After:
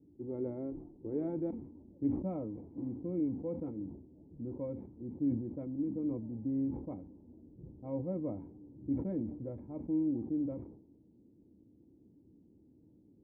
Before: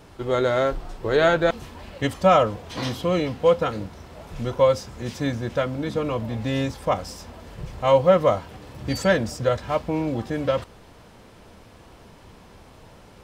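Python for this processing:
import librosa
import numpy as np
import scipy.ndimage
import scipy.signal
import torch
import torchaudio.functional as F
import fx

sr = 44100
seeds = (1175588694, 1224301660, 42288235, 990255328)

y = scipy.signal.sosfilt(scipy.signal.butter(2, 75.0, 'highpass', fs=sr, output='sos'), x)
y = fx.env_lowpass(y, sr, base_hz=420.0, full_db=-14.0)
y = fx.formant_cascade(y, sr, vowel='u')
y = fx.peak_eq(y, sr, hz=840.0, db=-12.5, octaves=0.99)
y = fx.sustainer(y, sr, db_per_s=78.0)
y = y * 10.0 ** (-2.0 / 20.0)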